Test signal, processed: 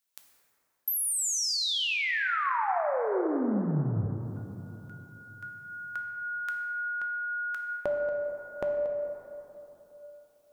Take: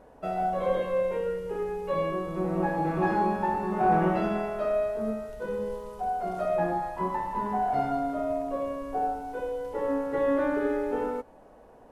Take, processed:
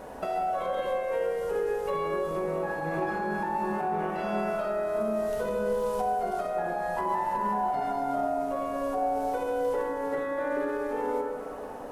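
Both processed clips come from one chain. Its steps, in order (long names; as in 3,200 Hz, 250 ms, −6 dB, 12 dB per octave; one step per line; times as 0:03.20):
spectral tilt +1.5 dB per octave
in parallel at +2.5 dB: speech leveller within 5 dB
on the sum: brickwall limiter −17.5 dBFS
downward compressor 6 to 1, threshold −33 dBFS
dense smooth reverb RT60 3.5 s, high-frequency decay 0.35×, DRR 2 dB
level +2.5 dB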